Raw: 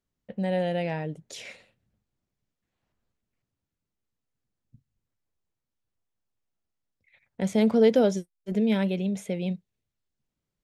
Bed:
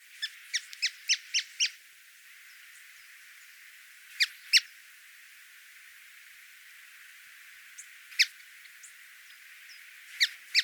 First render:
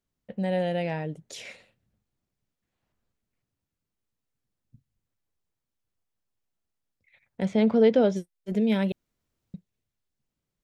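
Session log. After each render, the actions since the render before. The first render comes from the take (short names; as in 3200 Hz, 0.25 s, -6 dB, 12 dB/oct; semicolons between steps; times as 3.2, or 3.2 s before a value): 7.45–8.16 LPF 3900 Hz; 8.92–9.54 room tone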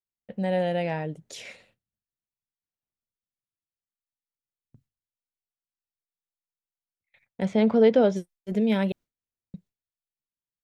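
gate with hold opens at -50 dBFS; dynamic EQ 970 Hz, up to +3 dB, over -37 dBFS, Q 0.7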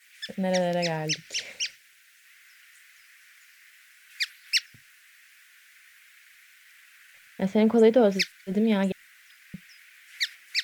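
add bed -2.5 dB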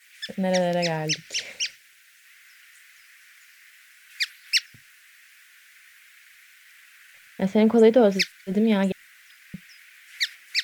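gain +2.5 dB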